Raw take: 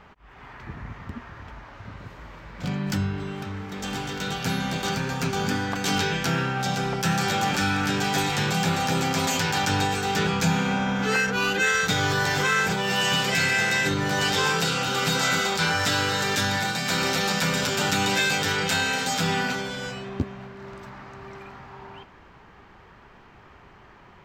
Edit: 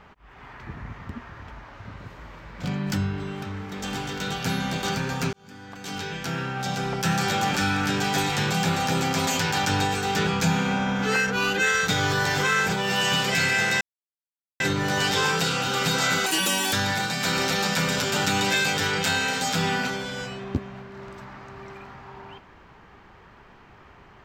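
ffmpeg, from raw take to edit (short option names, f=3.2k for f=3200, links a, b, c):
-filter_complex "[0:a]asplit=5[a][b][c][d][e];[a]atrim=end=5.33,asetpts=PTS-STARTPTS,afade=t=out:st=5.326:d=0.004:c=hsin[f];[b]atrim=start=5.33:end=13.81,asetpts=PTS-STARTPTS,afade=t=in:d=1.77,afade=t=out:st=8.476:d=0.004:c=hsin,apad=pad_dur=0.79[g];[c]atrim=start=13.81:end=15.474,asetpts=PTS-STARTPTS,afade=t=in:d=0.004:c=hsin[h];[d]atrim=start=15.47:end=16.38,asetpts=PTS-STARTPTS,asetrate=85554,aresample=44100,atrim=end_sample=20686,asetpts=PTS-STARTPTS[i];[e]atrim=start=16.376[j];[f][g][h]concat=n=3:v=0:a=1[k];[k][i]acrossfade=d=0.004:c1=hsin:c2=hsin[l];[l][j]acrossfade=d=0.004:c1=hsin:c2=hsin"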